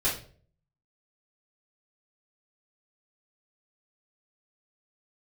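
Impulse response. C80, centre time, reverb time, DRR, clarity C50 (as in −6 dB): 12.0 dB, 29 ms, 0.45 s, −10.0 dB, 7.0 dB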